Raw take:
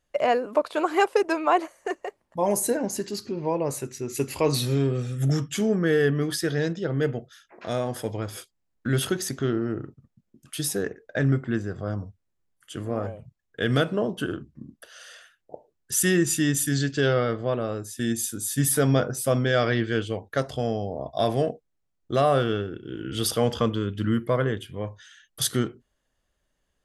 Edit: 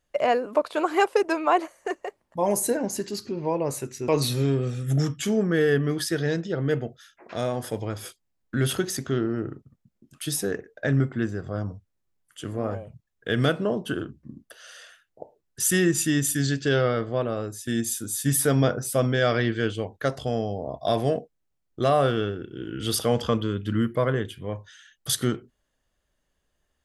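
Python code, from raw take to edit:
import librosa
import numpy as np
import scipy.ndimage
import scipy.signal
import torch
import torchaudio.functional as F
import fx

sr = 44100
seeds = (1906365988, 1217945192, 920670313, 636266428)

y = fx.edit(x, sr, fx.cut(start_s=4.08, length_s=0.32), tone=tone)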